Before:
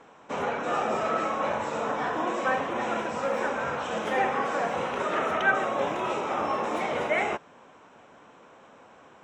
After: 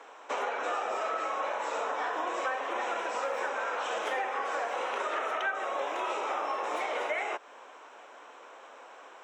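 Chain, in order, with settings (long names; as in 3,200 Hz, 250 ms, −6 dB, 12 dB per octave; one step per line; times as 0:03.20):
Bessel high-pass filter 530 Hz, order 8
downward compressor 6 to 1, threshold −34 dBFS, peak gain reduction 14.5 dB
level +4.5 dB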